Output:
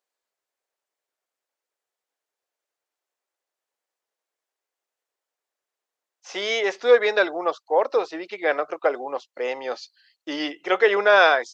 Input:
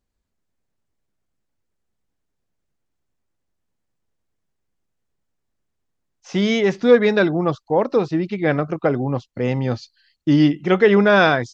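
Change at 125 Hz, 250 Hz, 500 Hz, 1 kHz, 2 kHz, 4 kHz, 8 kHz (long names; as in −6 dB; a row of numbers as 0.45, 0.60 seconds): below −35 dB, −16.5 dB, −3.0 dB, 0.0 dB, 0.0 dB, 0.0 dB, can't be measured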